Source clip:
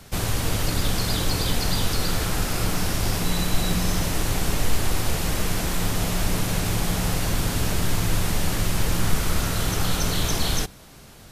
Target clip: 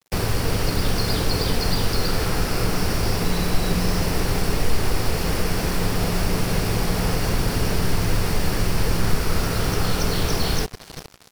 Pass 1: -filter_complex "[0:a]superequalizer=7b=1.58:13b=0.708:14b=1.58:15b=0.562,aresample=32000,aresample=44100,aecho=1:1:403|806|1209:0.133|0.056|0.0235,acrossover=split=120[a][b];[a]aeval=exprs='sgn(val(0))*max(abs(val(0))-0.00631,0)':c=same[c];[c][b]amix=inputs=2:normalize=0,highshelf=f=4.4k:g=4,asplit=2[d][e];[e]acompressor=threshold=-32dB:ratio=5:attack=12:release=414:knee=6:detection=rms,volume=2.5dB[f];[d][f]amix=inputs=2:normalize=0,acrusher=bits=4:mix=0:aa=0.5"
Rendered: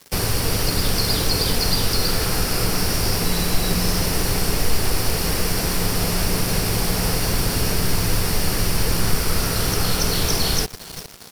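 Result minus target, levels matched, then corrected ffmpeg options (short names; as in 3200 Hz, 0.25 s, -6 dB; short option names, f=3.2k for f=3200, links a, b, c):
8000 Hz band +4.5 dB
-filter_complex "[0:a]superequalizer=7b=1.58:13b=0.708:14b=1.58:15b=0.562,aresample=32000,aresample=44100,aecho=1:1:403|806|1209:0.133|0.056|0.0235,acrossover=split=120[a][b];[a]aeval=exprs='sgn(val(0))*max(abs(val(0))-0.00631,0)':c=same[c];[c][b]amix=inputs=2:normalize=0,highshelf=f=4.4k:g=-7.5,asplit=2[d][e];[e]acompressor=threshold=-32dB:ratio=5:attack=12:release=414:knee=6:detection=rms,volume=2.5dB[f];[d][f]amix=inputs=2:normalize=0,acrusher=bits=4:mix=0:aa=0.5"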